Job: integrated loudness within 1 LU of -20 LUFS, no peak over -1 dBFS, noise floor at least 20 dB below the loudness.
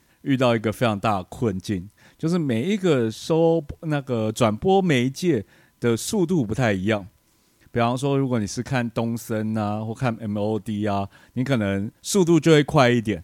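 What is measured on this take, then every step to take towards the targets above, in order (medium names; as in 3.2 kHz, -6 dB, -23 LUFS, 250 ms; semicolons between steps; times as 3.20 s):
tick rate 29 per s; loudness -22.5 LUFS; peak level -2.5 dBFS; loudness target -20.0 LUFS
-> de-click; trim +2.5 dB; peak limiter -1 dBFS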